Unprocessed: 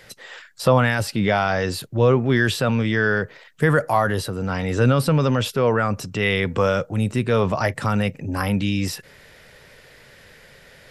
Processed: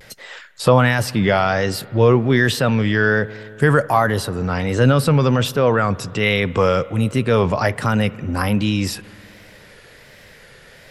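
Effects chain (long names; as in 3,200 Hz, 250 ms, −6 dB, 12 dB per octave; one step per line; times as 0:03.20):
pitch vibrato 1.3 Hz 81 cents
spring reverb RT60 2.9 s, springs 56 ms, chirp 40 ms, DRR 19.5 dB
level +3 dB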